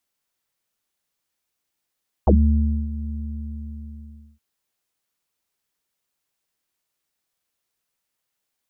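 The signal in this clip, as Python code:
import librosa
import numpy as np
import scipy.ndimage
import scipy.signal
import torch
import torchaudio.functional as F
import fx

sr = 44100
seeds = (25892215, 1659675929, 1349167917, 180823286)

y = fx.sub_voice(sr, note=38, wave='square', cutoff_hz=190.0, q=7.9, env_oct=2.5, env_s=0.06, attack_ms=3.4, decay_s=0.61, sustain_db=-14.5, release_s=1.28, note_s=0.84, slope=24)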